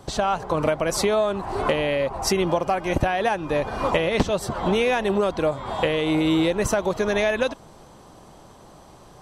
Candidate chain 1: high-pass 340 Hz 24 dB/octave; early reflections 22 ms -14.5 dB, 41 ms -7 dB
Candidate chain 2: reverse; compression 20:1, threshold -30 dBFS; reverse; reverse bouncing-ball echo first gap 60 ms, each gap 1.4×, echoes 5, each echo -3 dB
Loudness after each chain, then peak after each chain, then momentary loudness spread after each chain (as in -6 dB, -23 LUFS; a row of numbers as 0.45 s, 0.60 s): -23.0 LUFS, -31.5 LUFS; -7.5 dBFS, -18.0 dBFS; 4 LU, 13 LU